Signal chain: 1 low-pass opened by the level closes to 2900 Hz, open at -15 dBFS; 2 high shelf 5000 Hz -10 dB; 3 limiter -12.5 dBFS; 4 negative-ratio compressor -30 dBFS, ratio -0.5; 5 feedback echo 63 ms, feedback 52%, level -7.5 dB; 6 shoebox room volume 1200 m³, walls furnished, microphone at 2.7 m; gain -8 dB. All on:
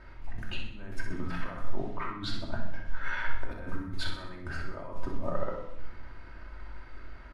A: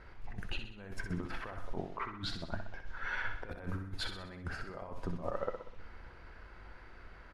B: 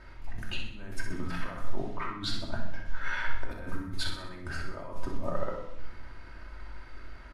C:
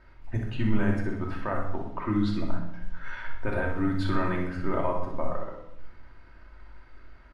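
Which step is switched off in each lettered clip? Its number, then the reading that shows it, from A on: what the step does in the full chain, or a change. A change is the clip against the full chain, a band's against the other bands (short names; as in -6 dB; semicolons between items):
6, echo-to-direct 1.5 dB to -6.0 dB; 2, 4 kHz band +3.0 dB; 4, crest factor change +2.5 dB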